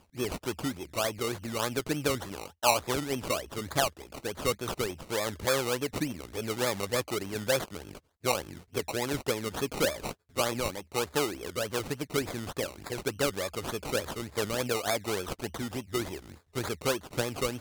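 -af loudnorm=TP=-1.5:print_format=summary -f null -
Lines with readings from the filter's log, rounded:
Input Integrated:    -32.0 LUFS
Input True Peak:      -7.3 dBTP
Input LRA:             2.2 LU
Input Threshold:     -42.1 LUFS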